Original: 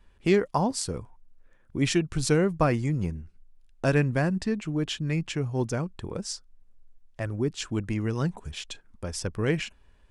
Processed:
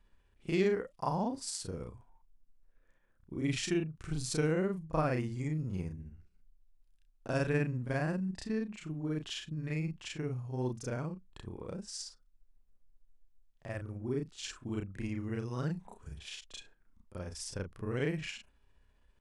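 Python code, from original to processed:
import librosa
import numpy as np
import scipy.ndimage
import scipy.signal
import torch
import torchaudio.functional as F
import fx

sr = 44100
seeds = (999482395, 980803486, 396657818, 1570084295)

y = fx.stretch_grains(x, sr, factor=1.9, grain_ms=135.0)
y = y * librosa.db_to_amplitude(-7.5)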